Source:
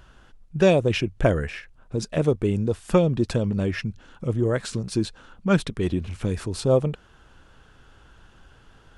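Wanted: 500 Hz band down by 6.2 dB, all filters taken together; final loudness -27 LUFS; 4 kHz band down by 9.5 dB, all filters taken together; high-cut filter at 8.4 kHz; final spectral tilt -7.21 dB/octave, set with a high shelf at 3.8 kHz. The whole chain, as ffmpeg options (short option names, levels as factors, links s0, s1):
-af "lowpass=8400,equalizer=f=500:t=o:g=-7.5,highshelf=f=3800:g=-7.5,equalizer=f=4000:t=o:g=-8"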